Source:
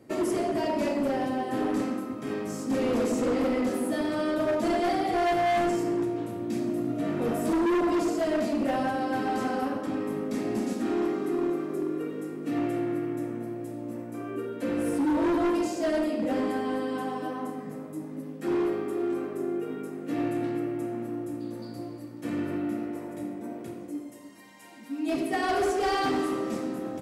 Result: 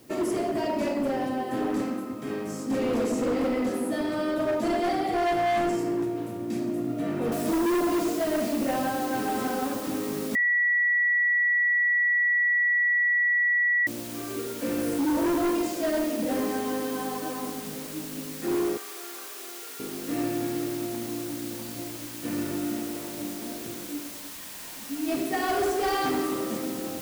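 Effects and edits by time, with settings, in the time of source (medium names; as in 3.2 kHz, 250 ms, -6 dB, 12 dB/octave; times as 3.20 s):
7.32 s: noise floor step -59 dB -41 dB
10.35–13.87 s: bleep 1.94 kHz -20 dBFS
18.77–19.80 s: high-pass 990 Hz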